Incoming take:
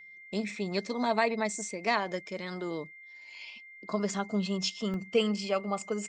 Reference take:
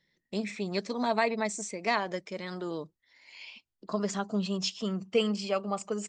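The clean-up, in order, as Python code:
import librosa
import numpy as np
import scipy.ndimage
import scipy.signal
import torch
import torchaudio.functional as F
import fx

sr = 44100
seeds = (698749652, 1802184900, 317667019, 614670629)

y = fx.notch(x, sr, hz=2100.0, q=30.0)
y = fx.fix_interpolate(y, sr, at_s=(2.28, 4.94), length_ms=1.6)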